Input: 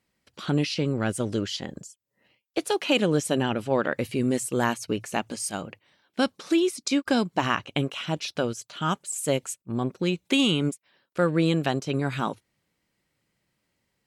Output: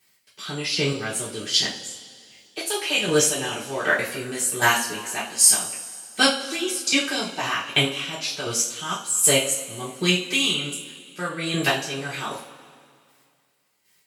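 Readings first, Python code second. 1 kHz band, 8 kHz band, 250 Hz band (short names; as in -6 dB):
+1.5 dB, +14.0 dB, -4.5 dB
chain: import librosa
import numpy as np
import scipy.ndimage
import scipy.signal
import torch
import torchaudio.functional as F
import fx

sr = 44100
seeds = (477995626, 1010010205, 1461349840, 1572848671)

y = fx.chopper(x, sr, hz=1.3, depth_pct=65, duty_pct=20)
y = fx.tilt_eq(y, sr, slope=3.5)
y = fx.rev_double_slope(y, sr, seeds[0], early_s=0.35, late_s=2.3, knee_db=-19, drr_db=-8.0)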